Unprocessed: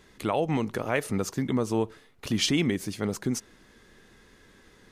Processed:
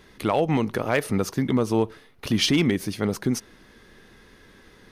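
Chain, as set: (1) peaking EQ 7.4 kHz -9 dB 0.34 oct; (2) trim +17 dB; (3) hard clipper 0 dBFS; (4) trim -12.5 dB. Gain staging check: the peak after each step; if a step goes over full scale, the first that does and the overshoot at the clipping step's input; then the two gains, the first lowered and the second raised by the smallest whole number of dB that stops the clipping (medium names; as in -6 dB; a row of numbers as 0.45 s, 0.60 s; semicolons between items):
-12.5 dBFS, +4.5 dBFS, 0.0 dBFS, -12.5 dBFS; step 2, 4.5 dB; step 2 +12 dB, step 4 -7.5 dB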